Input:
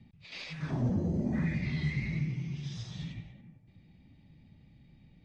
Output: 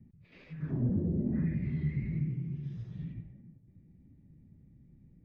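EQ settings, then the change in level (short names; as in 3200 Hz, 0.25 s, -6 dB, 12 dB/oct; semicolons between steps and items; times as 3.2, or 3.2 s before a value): dynamic EQ 3000 Hz, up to +7 dB, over -60 dBFS, Q 1.5; EQ curve 400 Hz 0 dB, 790 Hz -14 dB, 1700 Hz -11 dB, 3400 Hz -28 dB; 0.0 dB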